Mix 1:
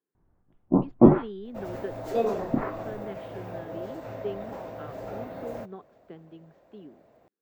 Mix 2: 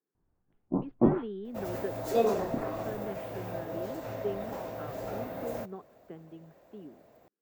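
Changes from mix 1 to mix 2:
speech: add high-frequency loss of the air 260 metres
first sound −8.5 dB
second sound: add high-shelf EQ 5,400 Hz +11 dB

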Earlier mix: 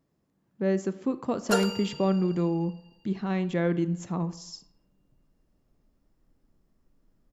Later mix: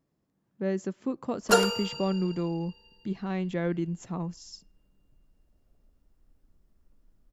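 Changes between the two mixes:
speech: send off
background +5.0 dB

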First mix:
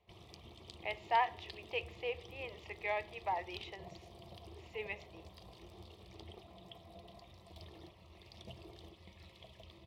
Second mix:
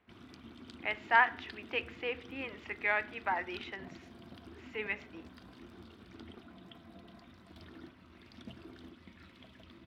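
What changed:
background −4.0 dB
master: remove phaser with its sweep stopped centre 620 Hz, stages 4

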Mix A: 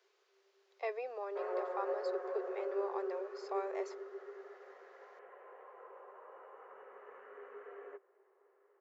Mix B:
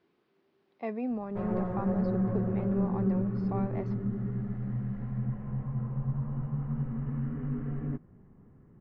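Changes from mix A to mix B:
speech: add high-frequency loss of the air 290 metres
master: remove Chebyshev high-pass with heavy ripple 380 Hz, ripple 3 dB

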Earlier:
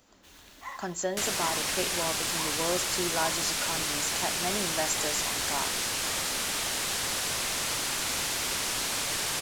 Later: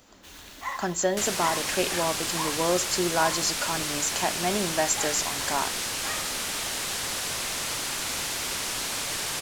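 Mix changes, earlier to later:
speech +6.0 dB
first sound +7.5 dB

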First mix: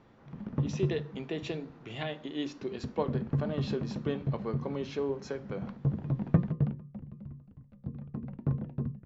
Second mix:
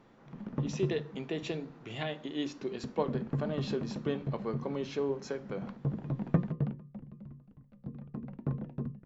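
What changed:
background: add parametric band 85 Hz −9.5 dB 1.2 octaves
master: remove low-pass filter 6,800 Hz 12 dB per octave

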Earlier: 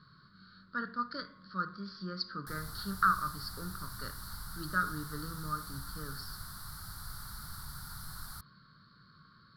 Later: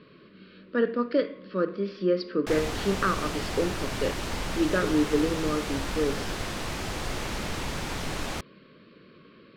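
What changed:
background +11.0 dB
master: remove drawn EQ curve 140 Hz 0 dB, 320 Hz −22 dB, 510 Hz −26 dB, 1,400 Hz +4 dB, 2,600 Hz −29 dB, 4,400 Hz +5 dB, 6,600 Hz −9 dB, 11,000 Hz +14 dB

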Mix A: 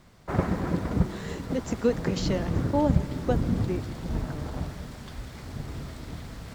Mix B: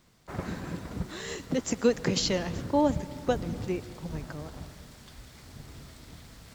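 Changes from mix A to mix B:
background −10.5 dB
master: add high-shelf EQ 2,400 Hz +9.5 dB

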